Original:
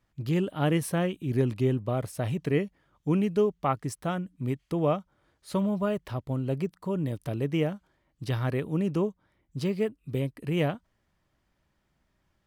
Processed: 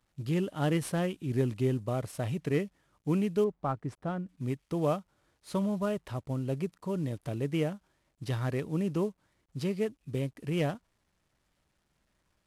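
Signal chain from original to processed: CVSD 64 kbps; 3.44–4.29 LPF 1200 Hz 6 dB/oct; gain -3 dB

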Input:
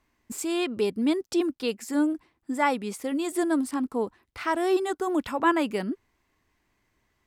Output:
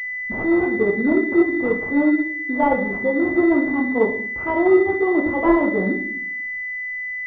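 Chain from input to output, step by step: in parallel at -2.5 dB: vocal rider within 5 dB 0.5 s; on the sum: shoebox room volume 71 m³, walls mixed, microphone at 0.8 m; pulse-width modulation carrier 2000 Hz

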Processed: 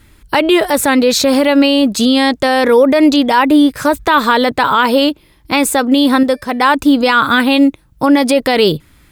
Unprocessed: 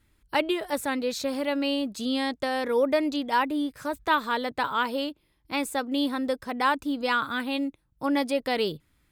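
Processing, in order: 6.23–6.68 resonator 590 Hz, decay 0.44 s, mix 50%; maximiser +21 dB; gain -1 dB

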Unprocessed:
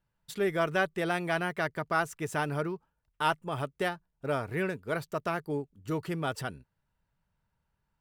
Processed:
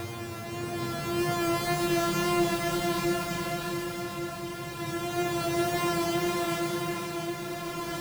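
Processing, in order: sample sorter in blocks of 128 samples; Paulstretch 12×, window 0.25 s, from 4.45; wow and flutter 23 cents; on a send: swung echo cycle 1.137 s, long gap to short 1.5:1, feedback 46%, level -8 dB; on the sum: gain +2 dB

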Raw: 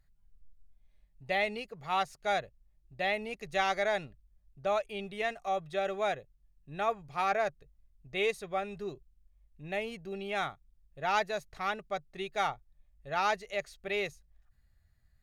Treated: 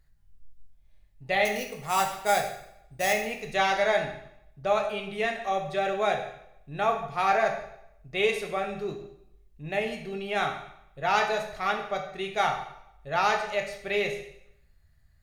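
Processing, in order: 1.45–3.13 sample-rate reducer 8600 Hz, jitter 0%; reverb RT60 0.80 s, pre-delay 5 ms, DRR 2.5 dB; gain +4 dB

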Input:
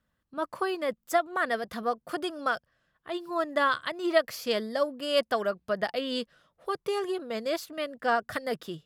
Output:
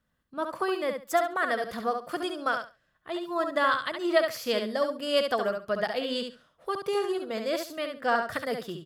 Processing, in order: feedback echo 69 ms, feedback 19%, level -6 dB

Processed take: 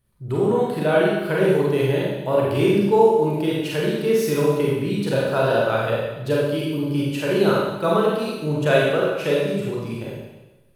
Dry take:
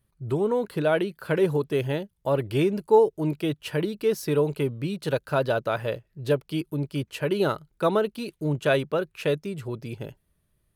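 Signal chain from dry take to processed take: Schroeder reverb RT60 1.1 s, combs from 31 ms, DRR -5 dB

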